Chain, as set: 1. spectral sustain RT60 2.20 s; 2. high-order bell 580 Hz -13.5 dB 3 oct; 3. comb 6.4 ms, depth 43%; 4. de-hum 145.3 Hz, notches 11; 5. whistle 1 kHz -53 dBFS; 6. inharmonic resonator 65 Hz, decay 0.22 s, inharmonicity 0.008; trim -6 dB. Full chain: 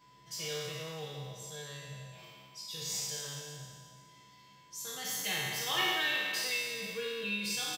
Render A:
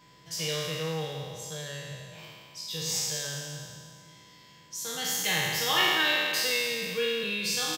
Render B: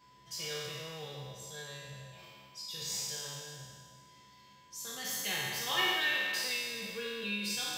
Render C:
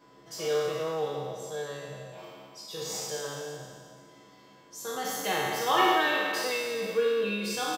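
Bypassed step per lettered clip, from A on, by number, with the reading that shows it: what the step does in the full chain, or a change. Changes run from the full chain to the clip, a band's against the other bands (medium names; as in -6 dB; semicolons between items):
6, 500 Hz band +1.5 dB; 3, 125 Hz band -2.0 dB; 2, 500 Hz band +11.0 dB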